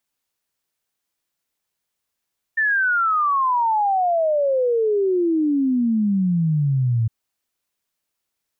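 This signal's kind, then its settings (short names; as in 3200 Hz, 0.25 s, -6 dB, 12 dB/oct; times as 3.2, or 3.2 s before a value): log sweep 1800 Hz -> 110 Hz 4.51 s -16 dBFS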